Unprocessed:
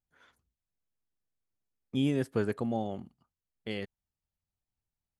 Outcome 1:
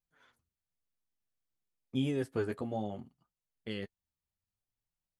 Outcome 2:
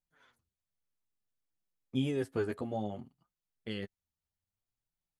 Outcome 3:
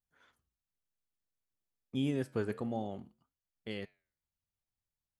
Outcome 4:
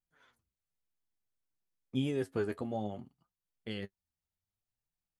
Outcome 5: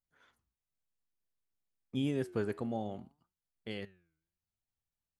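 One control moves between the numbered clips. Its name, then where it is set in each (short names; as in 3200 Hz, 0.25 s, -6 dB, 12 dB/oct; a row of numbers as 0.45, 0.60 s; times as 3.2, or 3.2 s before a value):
flange, regen: -19, +7, -85, +35, +88%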